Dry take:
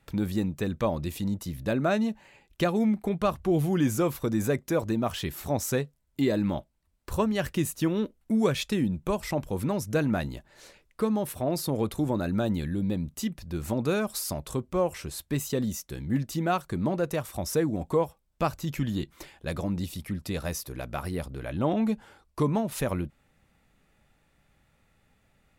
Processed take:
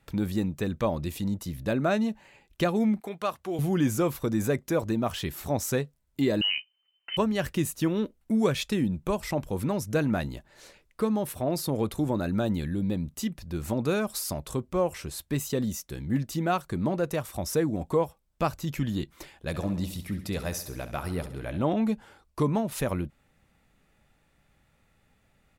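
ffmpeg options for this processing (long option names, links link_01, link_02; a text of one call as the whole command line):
ffmpeg -i in.wav -filter_complex "[0:a]asettb=1/sr,asplit=3[link_01][link_02][link_03];[link_01]atrim=end=3.004[link_04];[link_02]atrim=start=3:end=3.59,asetpts=PTS-STARTPTS,afade=type=in:duration=0.004:curve=qsin,afade=type=out:start_time=0.586:duration=0.004:curve=qsin,highpass=frequency=770:poles=1[link_05];[link_03]atrim=start=3.586[link_06];[link_04][link_05]acrossfade=duration=0.004:curve1=hsin:curve2=qsin[link_07];[link_07][link_06]acrossfade=duration=0.004:curve1=qsin:curve2=hsin,asettb=1/sr,asplit=3[link_08][link_09][link_10];[link_08]atrim=end=6.414[link_11];[link_09]atrim=start=6.41:end=7.17,asetpts=PTS-STARTPTS,afade=type=in:duration=0.004:curve=qsin,afade=type=out:start_time=0.756:duration=0.004:curve=qsin,lowpass=frequency=2600:width_type=q:width=0.5098,lowpass=frequency=2600:width_type=q:width=0.6013,lowpass=frequency=2600:width_type=q:width=0.9,lowpass=frequency=2600:width_type=q:width=2.563,afreqshift=-3100[link_12];[link_10]atrim=start=7.166[link_13];[link_11][link_12]acrossfade=duration=0.004:curve1=hsin:curve2=qsin[link_14];[link_14][link_13]acrossfade=duration=0.004:curve1=qsin:curve2=hsin,asplit=3[link_15][link_16][link_17];[link_15]afade=type=out:start_time=19.53:duration=0.02[link_18];[link_16]aecho=1:1:67|134|201|268|335|402:0.251|0.136|0.0732|0.0396|0.0214|0.0115,afade=type=in:start_time=19.53:duration=0.02,afade=type=out:start_time=21.62:duration=0.02[link_19];[link_17]afade=type=in:start_time=21.62:duration=0.02[link_20];[link_18][link_19][link_20]amix=inputs=3:normalize=0" out.wav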